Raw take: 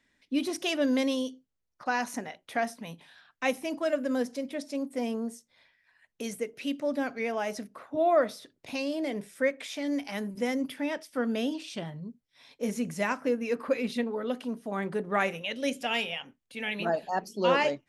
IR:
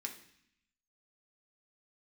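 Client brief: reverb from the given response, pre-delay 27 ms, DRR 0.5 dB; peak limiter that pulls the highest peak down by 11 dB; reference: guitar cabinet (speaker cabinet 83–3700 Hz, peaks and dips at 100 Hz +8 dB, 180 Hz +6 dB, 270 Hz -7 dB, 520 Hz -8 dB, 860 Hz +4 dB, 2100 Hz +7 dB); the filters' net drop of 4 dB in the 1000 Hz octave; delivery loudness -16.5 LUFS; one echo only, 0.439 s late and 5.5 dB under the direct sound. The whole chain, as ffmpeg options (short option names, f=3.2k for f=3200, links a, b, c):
-filter_complex "[0:a]equalizer=f=1k:t=o:g=-7.5,alimiter=level_in=1dB:limit=-24dB:level=0:latency=1,volume=-1dB,aecho=1:1:439:0.531,asplit=2[a][b];[1:a]atrim=start_sample=2205,adelay=27[c];[b][c]afir=irnorm=-1:irlink=0,volume=1dB[d];[a][d]amix=inputs=2:normalize=0,highpass=83,equalizer=f=100:t=q:w=4:g=8,equalizer=f=180:t=q:w=4:g=6,equalizer=f=270:t=q:w=4:g=-7,equalizer=f=520:t=q:w=4:g=-8,equalizer=f=860:t=q:w=4:g=4,equalizer=f=2.1k:t=q:w=4:g=7,lowpass=f=3.7k:w=0.5412,lowpass=f=3.7k:w=1.3066,volume=16dB"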